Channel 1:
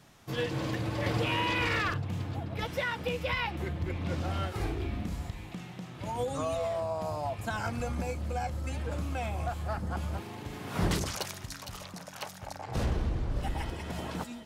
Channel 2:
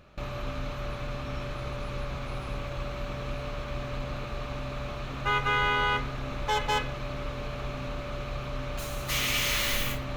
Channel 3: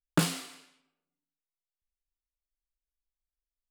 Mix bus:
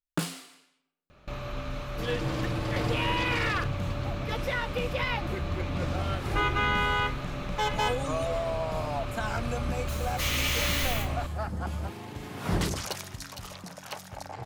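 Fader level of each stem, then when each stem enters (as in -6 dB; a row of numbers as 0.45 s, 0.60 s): +1.0 dB, -1.0 dB, -4.5 dB; 1.70 s, 1.10 s, 0.00 s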